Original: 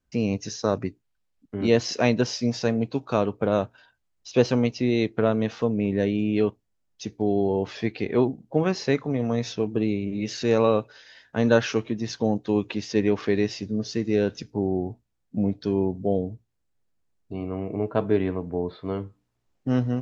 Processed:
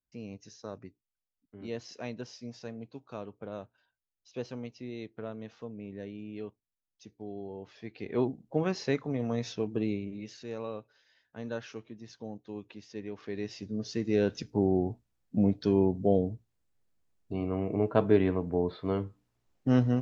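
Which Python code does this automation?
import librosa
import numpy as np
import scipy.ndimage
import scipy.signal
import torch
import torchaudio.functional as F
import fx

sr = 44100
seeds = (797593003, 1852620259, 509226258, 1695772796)

y = fx.gain(x, sr, db=fx.line((7.79, -18.0), (8.24, -6.5), (9.94, -6.5), (10.43, -18.0), (13.14, -18.0), (13.63, -8.5), (14.57, -1.0)))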